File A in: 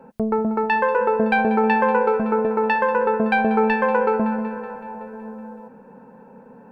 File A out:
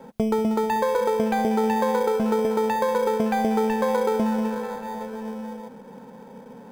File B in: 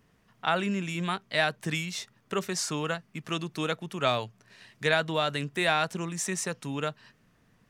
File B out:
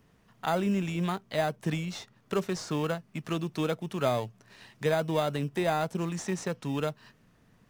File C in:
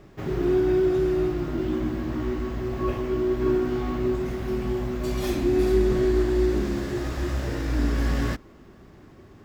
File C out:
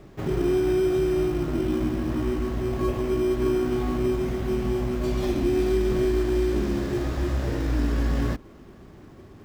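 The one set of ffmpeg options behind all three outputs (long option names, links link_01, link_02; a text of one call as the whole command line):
ffmpeg -i in.wav -filter_complex "[0:a]acrossover=split=1000|6300[link_01][link_02][link_03];[link_01]acompressor=threshold=-22dB:ratio=4[link_04];[link_02]acompressor=threshold=-40dB:ratio=4[link_05];[link_03]acompressor=threshold=-57dB:ratio=4[link_06];[link_04][link_05][link_06]amix=inputs=3:normalize=0,asplit=2[link_07][link_08];[link_08]acrusher=samples=16:mix=1:aa=0.000001,volume=-9.5dB[link_09];[link_07][link_09]amix=inputs=2:normalize=0" out.wav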